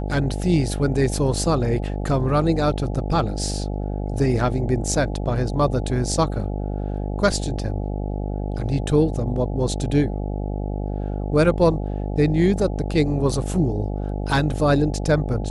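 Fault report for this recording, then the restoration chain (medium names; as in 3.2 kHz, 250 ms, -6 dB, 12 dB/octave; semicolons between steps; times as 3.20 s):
buzz 50 Hz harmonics 17 -26 dBFS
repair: de-hum 50 Hz, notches 17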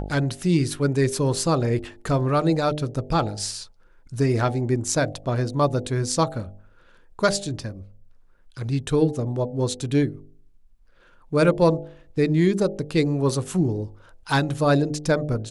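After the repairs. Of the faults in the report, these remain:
nothing left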